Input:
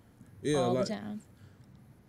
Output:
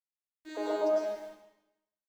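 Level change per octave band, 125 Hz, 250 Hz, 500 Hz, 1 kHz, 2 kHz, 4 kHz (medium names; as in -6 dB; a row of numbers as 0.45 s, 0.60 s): under -30 dB, -5.5 dB, +1.5 dB, -1.5 dB, -1.5 dB, -7.5 dB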